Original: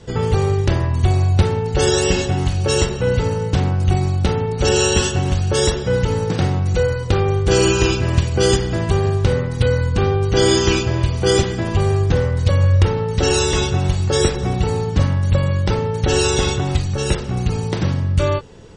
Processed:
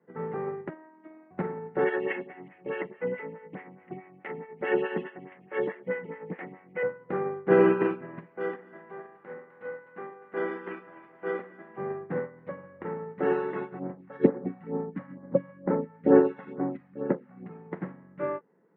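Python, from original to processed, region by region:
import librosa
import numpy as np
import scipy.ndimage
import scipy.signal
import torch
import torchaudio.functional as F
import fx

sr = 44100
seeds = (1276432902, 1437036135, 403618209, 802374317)

y = fx.chain(x, sr, fx.low_shelf(hz=170.0, db=-9.5),
    fx.robotise(hz=314.0), at=(0.69, 1.31))
y = fx.chain(y, sr, fx.band_shelf(hz=2500.0, db=14.5, octaves=1.1),
    fx.stagger_phaser(hz=4.7), at=(1.84, 6.83))
y = fx.chain(y, sr, fx.highpass(hz=600.0, slope=6),
    fx.echo_split(split_hz=700.0, low_ms=118, high_ms=256, feedback_pct=52, wet_db=-8.5), at=(8.25, 11.78))
y = fx.chain(y, sr, fx.phaser_stages(stages=2, low_hz=330.0, high_hz=3800.0, hz=2.2, feedback_pct=10),
    fx.small_body(hz=(270.0, 520.0), ring_ms=50, db=11), at=(13.79, 17.46))
y = scipy.signal.sosfilt(scipy.signal.cheby1(4, 1.0, [170.0, 2000.0], 'bandpass', fs=sr, output='sos'), y)
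y = fx.upward_expand(y, sr, threshold_db=-28.0, expansion=2.5)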